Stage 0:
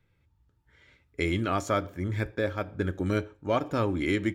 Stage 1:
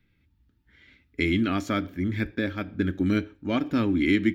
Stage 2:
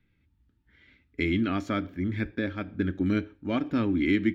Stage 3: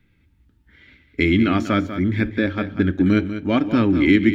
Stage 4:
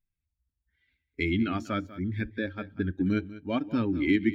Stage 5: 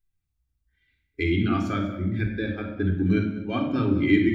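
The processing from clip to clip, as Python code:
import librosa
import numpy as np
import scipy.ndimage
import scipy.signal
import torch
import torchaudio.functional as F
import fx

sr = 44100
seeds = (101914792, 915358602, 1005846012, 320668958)

y1 = fx.graphic_eq(x, sr, hz=(125, 250, 500, 1000, 2000, 4000, 8000), db=(-6, 10, -9, -8, 3, 3, -10))
y1 = y1 * librosa.db_to_amplitude(3.0)
y2 = fx.high_shelf(y1, sr, hz=6200.0, db=-12.0)
y2 = y2 * librosa.db_to_amplitude(-2.0)
y3 = y2 + 10.0 ** (-11.0 / 20.0) * np.pad(y2, (int(194 * sr / 1000.0), 0))[:len(y2)]
y3 = y3 * librosa.db_to_amplitude(9.0)
y4 = fx.bin_expand(y3, sr, power=1.5)
y4 = y4 * librosa.db_to_amplitude(-7.5)
y5 = fx.room_shoebox(y4, sr, seeds[0], volume_m3=2400.0, walls='furnished', distance_m=3.7)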